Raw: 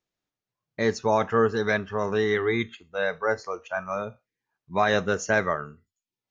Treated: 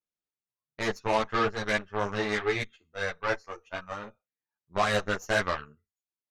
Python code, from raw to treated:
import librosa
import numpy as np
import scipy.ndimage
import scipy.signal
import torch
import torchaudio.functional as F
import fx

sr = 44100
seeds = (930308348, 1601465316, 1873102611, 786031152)

y = fx.cheby_harmonics(x, sr, harmonics=(5, 6, 7), levels_db=(-31, -24, -18), full_scale_db=-9.5)
y = fx.dynamic_eq(y, sr, hz=240.0, q=0.81, threshold_db=-39.0, ratio=4.0, max_db=-5)
y = fx.ensemble(y, sr)
y = F.gain(torch.from_numpy(y), 1.0).numpy()